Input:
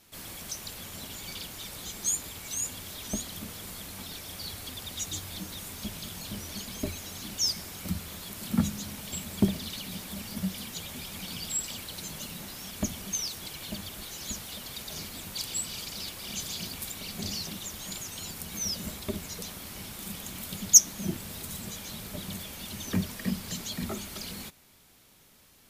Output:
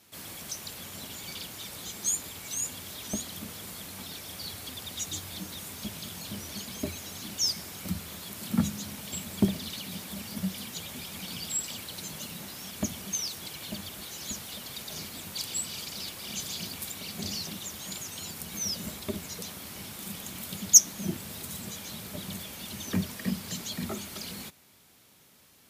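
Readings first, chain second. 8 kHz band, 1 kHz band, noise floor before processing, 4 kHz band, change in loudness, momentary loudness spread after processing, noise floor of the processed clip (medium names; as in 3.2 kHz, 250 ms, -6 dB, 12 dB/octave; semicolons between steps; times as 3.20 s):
0.0 dB, 0.0 dB, -58 dBFS, 0.0 dB, 0.0 dB, 10 LU, -59 dBFS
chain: high-pass 82 Hz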